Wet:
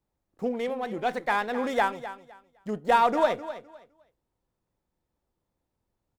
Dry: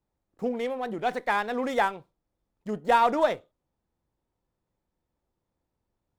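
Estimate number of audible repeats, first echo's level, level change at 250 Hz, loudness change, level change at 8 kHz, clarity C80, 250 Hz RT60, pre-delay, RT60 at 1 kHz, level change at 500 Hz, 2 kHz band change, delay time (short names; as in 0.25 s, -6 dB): 2, -13.5 dB, 0.0 dB, 0.0 dB, n/a, none, none, none, none, 0.0 dB, 0.0 dB, 0.256 s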